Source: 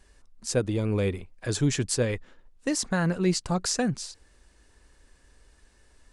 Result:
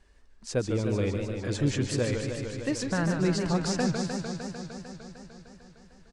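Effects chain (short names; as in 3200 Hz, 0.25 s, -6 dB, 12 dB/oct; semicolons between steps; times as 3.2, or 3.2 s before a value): air absorption 70 m; echo 0.2 s -23.5 dB; warbling echo 0.151 s, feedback 79%, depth 158 cents, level -6 dB; gain -2.5 dB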